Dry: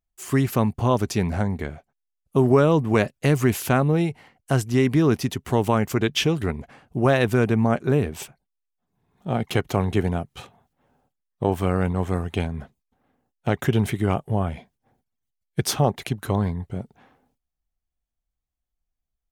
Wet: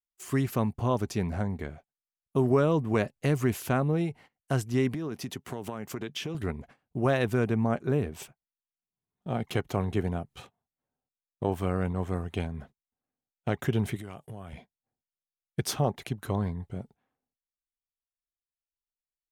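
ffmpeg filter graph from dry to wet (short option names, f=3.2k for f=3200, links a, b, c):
-filter_complex "[0:a]asettb=1/sr,asplit=3[a][b][c];[a]atrim=end=4.944[d];[b]atrim=start=4.94:end=6.35,asetpts=PTS-STARTPTS,afade=t=in:d=0.004:c=qsin,afade=t=out:st=1.406:d=0.004:c=qsin,highpass=130,acompressor=threshold=-23dB:ratio=10:attack=3.2:release=140:knee=1:detection=peak[e];[c]atrim=start=6.346[f];[d][e]acrossfade=d=0.004:c1=hsin:c2=qsin[g];[g][f]acrossfade=d=0.004:c1=qsin:c2=hsin,asettb=1/sr,asplit=3[h][i][j];[h]atrim=end=13.964[k];[i]atrim=start=13.96:end=14.53,asetpts=PTS-STARTPTS,afade=t=in:d=0.004:c=qsin,afade=t=out:st=0.566:d=0.004:c=qsin,highshelf=f=2.1k:g=10,acompressor=threshold=-32dB:ratio=4:attack=3.2:release=140:knee=1:detection=peak,highpass=61[l];[j]atrim=start=14.526[m];[k][l]acrossfade=d=0.004:c1=hsin:c2=qsin[n];[n][m]acrossfade=d=0.004:c1=qsin:c2=hsin,agate=range=-18dB:threshold=-43dB:ratio=16:detection=peak,bandreject=f=840:w=27,adynamicequalizer=threshold=0.0126:dfrequency=1600:dqfactor=0.7:tfrequency=1600:tqfactor=0.7:attack=5:release=100:ratio=0.375:range=1.5:mode=cutabove:tftype=highshelf,volume=-6.5dB"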